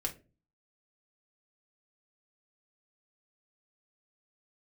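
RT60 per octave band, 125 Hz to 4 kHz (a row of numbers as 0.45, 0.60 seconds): 0.60, 0.50, 0.40, 0.25, 0.25, 0.20 seconds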